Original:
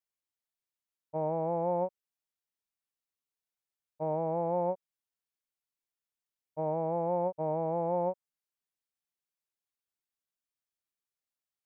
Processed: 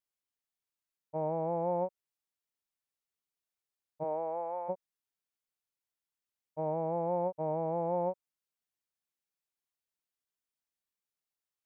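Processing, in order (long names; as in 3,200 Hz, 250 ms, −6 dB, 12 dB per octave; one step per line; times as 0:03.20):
0:04.03–0:04.68: high-pass filter 310 Hz → 950 Hz 12 dB per octave
level −1.5 dB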